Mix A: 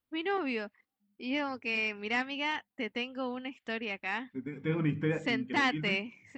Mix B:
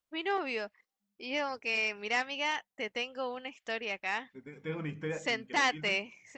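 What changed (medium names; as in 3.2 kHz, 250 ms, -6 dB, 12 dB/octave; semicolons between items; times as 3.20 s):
second voice -4.0 dB; master: add fifteen-band graphic EQ 100 Hz -9 dB, 250 Hz -9 dB, 630 Hz +4 dB, 6.3 kHz +11 dB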